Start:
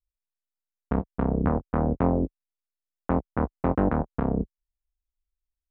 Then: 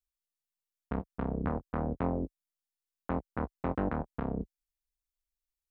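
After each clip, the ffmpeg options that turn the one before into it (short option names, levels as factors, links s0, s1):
-af "highshelf=f=2300:g=11,volume=0.355"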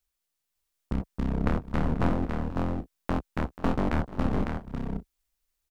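-af "aeval=exprs='clip(val(0),-1,0.00944)':c=same,aecho=1:1:302|485|554|590:0.119|0.158|0.668|0.158,volume=2.82"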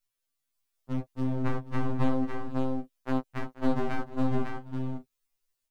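-af "afftfilt=real='re*2.45*eq(mod(b,6),0)':imag='im*2.45*eq(mod(b,6),0)':win_size=2048:overlap=0.75"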